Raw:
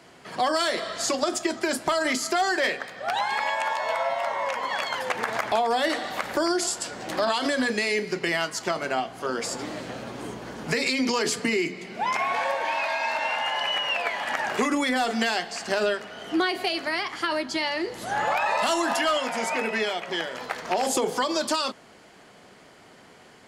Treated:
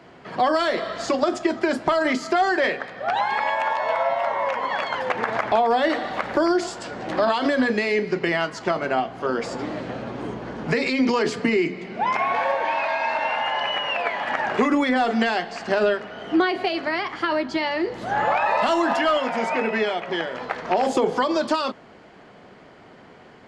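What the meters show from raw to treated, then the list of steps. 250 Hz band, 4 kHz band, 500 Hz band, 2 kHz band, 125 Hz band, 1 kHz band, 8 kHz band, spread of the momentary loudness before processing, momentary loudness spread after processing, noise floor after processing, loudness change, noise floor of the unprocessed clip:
+5.5 dB, −2.0 dB, +4.5 dB, +1.5 dB, +5.5 dB, +4.0 dB, −10.0 dB, 7 LU, 7 LU, −48 dBFS, +3.0 dB, −51 dBFS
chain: head-to-tape spacing loss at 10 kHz 23 dB
level +6 dB

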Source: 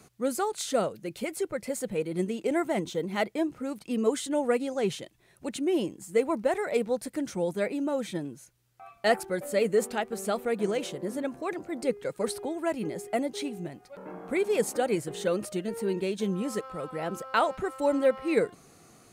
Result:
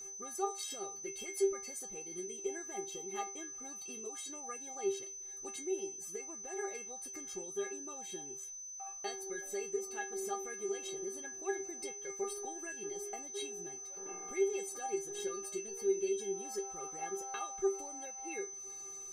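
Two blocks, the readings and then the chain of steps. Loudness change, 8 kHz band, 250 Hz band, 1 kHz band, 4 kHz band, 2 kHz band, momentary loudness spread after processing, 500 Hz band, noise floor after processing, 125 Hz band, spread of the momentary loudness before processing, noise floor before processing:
−10.0 dB, +3.5 dB, −15.5 dB, −10.5 dB, −9.5 dB, −11.5 dB, 8 LU, −10.5 dB, −47 dBFS, below −20 dB, 9 LU, −60 dBFS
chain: downward compressor 4 to 1, threshold −36 dBFS, peak gain reduction 15 dB
stiff-string resonator 390 Hz, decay 0.31 s, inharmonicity 0.008
steady tone 6,100 Hz −58 dBFS
level +13.5 dB

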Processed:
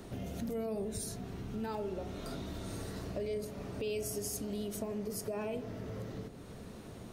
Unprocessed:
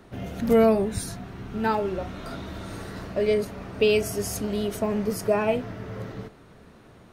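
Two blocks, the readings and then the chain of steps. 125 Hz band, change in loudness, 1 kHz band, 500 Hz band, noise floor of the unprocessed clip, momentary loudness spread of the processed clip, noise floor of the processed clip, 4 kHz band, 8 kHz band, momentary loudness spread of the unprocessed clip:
−8.5 dB, −14.0 dB, −16.0 dB, −14.5 dB, −51 dBFS, 8 LU, −49 dBFS, −12.0 dB, −5.5 dB, 16 LU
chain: drawn EQ curve 460 Hz 0 dB, 1,500 Hz −6 dB, 7,300 Hz +5 dB
brickwall limiter −18.5 dBFS, peak gain reduction 8.5 dB
downward compressor 2.5 to 1, threshold −46 dBFS, peak gain reduction 15.5 dB
feedback echo with a low-pass in the loop 87 ms, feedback 82%, low-pass 1,000 Hz, level −12 dB
level +3 dB

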